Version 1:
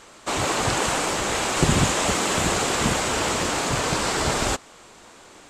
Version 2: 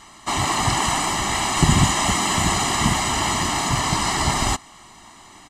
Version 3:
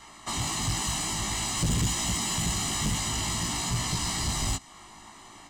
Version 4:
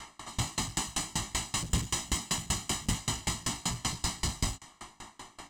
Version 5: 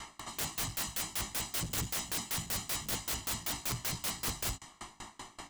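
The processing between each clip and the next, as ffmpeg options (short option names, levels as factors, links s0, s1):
-af "aecho=1:1:1:0.84"
-filter_complex "[0:a]acrossover=split=240|3000[s0][s1][s2];[s1]acompressor=threshold=0.0251:ratio=6[s3];[s0][s3][s2]amix=inputs=3:normalize=0,flanger=delay=17:depth=2.2:speed=0.52,asoftclip=type=tanh:threshold=0.0841"
-filter_complex "[0:a]asplit=2[s0][s1];[s1]alimiter=level_in=2.37:limit=0.0631:level=0:latency=1:release=198,volume=0.422,volume=1.41[s2];[s0][s2]amix=inputs=2:normalize=0,aeval=exprs='val(0)*pow(10,-28*if(lt(mod(5.2*n/s,1),2*abs(5.2)/1000),1-mod(5.2*n/s,1)/(2*abs(5.2)/1000),(mod(5.2*n/s,1)-2*abs(5.2)/1000)/(1-2*abs(5.2)/1000))/20)':c=same"
-af "aeval=exprs='(mod(28.2*val(0)+1,2)-1)/28.2':c=same"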